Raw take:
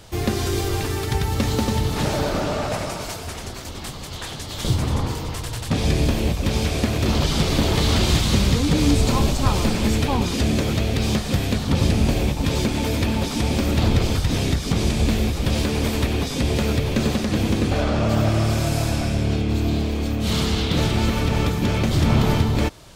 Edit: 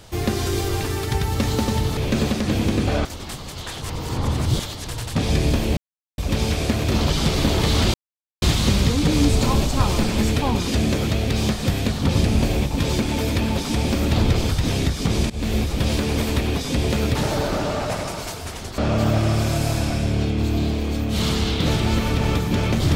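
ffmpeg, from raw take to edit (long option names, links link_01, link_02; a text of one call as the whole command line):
ffmpeg -i in.wav -filter_complex "[0:a]asplit=10[link_01][link_02][link_03][link_04][link_05][link_06][link_07][link_08][link_09][link_10];[link_01]atrim=end=1.972[link_11];[link_02]atrim=start=16.808:end=17.892[link_12];[link_03]atrim=start=3.598:end=4.372[link_13];[link_04]atrim=start=4.368:end=5.422,asetpts=PTS-STARTPTS,areverse[link_14];[link_05]atrim=start=5.418:end=6.32,asetpts=PTS-STARTPTS,afade=type=out:start_time=0.898:duration=0.004:curve=hsin,apad=pad_dur=0.41[link_15];[link_06]atrim=start=6.32:end=8.08,asetpts=PTS-STARTPTS,afade=type=in:duration=0.004:curve=hsin,afade=type=out:start_time=1.756:duration=0.004:curve=hsin,apad=pad_dur=0.48[link_16];[link_07]atrim=start=8.08:end=14.96,asetpts=PTS-STARTPTS,afade=type=in:duration=0.004:curve=hsin,afade=type=out:start_time=6.876:duration=0.004:curve=hsin:silence=0.0944061[link_17];[link_08]atrim=start=14.96:end=16.812,asetpts=PTS-STARTPTS,afade=type=in:duration=0.25:silence=0.0944061[link_18];[link_09]atrim=start=1.968:end=3.602[link_19];[link_10]atrim=start=17.888[link_20];[link_11][link_12]acrossfade=duration=0.004:curve1=hsin:curve2=hsin[link_21];[link_21][link_13]acrossfade=duration=0.004:curve1=hsin:curve2=hsin[link_22];[link_22][link_14]acrossfade=duration=0.004:curve1=hsin:curve2=hsin[link_23];[link_15][link_16][link_17][link_18]concat=n=4:v=0:a=1[link_24];[link_23][link_24]acrossfade=duration=0.004:curve1=hsin:curve2=hsin[link_25];[link_25][link_19]acrossfade=duration=0.004:curve1=hsin:curve2=hsin[link_26];[link_26][link_20]acrossfade=duration=0.004:curve1=hsin:curve2=hsin" out.wav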